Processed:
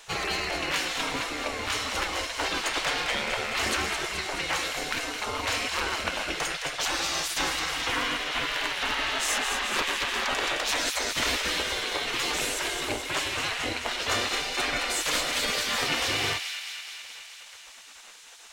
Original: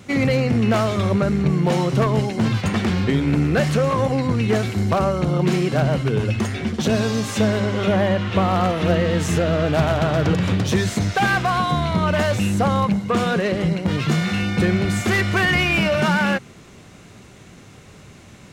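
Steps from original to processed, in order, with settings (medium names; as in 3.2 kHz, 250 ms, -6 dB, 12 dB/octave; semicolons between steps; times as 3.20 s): spectral gate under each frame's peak -20 dB weak; on a send: feedback echo behind a high-pass 214 ms, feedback 69%, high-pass 2 kHz, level -6 dB; on the sum: trim +3 dB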